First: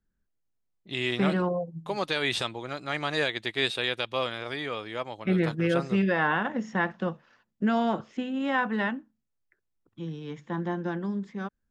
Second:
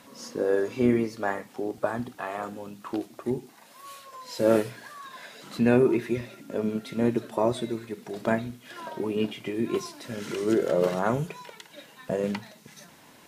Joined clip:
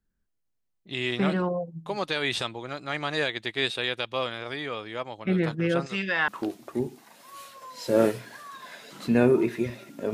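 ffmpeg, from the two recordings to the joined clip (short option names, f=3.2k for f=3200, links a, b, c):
-filter_complex "[0:a]asettb=1/sr,asplit=3[a][b][c];[a]atrim=end=5.864[d];[b]atrim=start=5.86:end=6.28,asetpts=PTS-STARTPTS,afade=t=in:d=0.004:c=qsin,afade=t=out:st=0.416:d=0.004:c=qsin,tiltshelf=f=1.2k:g=-10[e];[c]atrim=start=6.276[f];[d][e]acrossfade=d=0.004:c1=hsin:c2=qsin[g];[g][f]acrossfade=d=0.004:c1=qsin:c2=hsin,apad=whole_dur=10.13,atrim=end=10.13,atrim=end=6.282[h];[1:a]atrim=start=2.788:end=6.64[i];[h][i]acrossfade=d=0.004:c1=hsin:c2=hsin"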